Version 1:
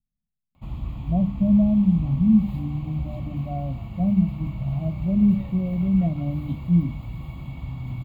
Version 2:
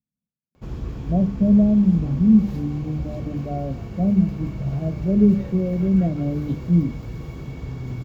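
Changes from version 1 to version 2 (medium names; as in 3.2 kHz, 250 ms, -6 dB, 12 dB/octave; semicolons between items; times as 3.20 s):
speech: add high-pass 110 Hz; master: remove static phaser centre 1.6 kHz, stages 6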